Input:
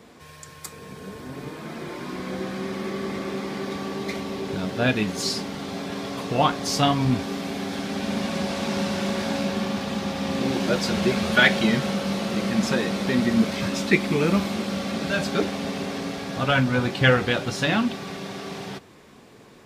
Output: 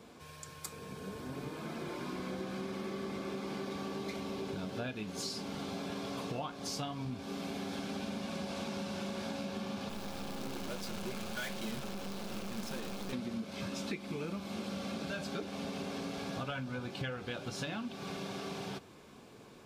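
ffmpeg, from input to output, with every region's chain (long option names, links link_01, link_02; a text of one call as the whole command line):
ffmpeg -i in.wav -filter_complex "[0:a]asettb=1/sr,asplit=3[link_01][link_02][link_03];[link_01]atrim=end=9.894[link_04];[link_02]atrim=start=9.89:end=13.13,asetpts=PTS-STARTPTS,afade=type=in:duration=0.004:curve=qsin,afade=type=out:start_time=3.236:duration=0.004:curve=qsin,acrusher=bits=4:dc=4:mix=0:aa=0.000001,volume=23dB,asoftclip=hard,volume=-23dB[link_05];[link_03]atrim=start=13.126[link_06];[link_04][link_05]acrossfade=duration=0.004:curve1=hsin:curve2=qsin[link_07];[link_07][link_06]acrossfade=duration=0.004:curve1=qsin:curve2=hsin,bandreject=frequency=1900:width=7.2,acompressor=threshold=-30dB:ratio=12,volume=-5.5dB" out.wav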